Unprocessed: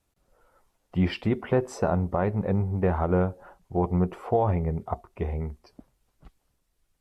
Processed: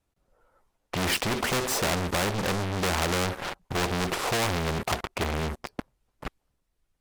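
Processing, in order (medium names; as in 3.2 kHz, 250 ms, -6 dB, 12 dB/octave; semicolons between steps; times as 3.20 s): treble shelf 4.9 kHz -5.5 dB; waveshaping leveller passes 5; spectrum-flattening compressor 2:1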